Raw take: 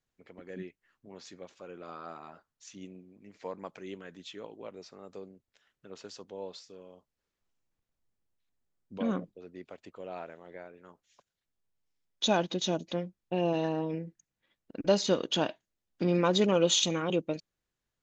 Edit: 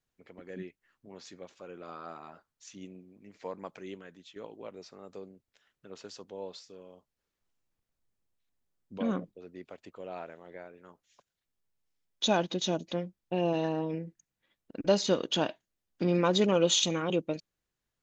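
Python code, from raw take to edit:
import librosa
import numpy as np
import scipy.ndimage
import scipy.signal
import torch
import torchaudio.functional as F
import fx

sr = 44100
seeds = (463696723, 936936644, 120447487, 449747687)

y = fx.edit(x, sr, fx.fade_out_to(start_s=3.86, length_s=0.5, floor_db=-10.0), tone=tone)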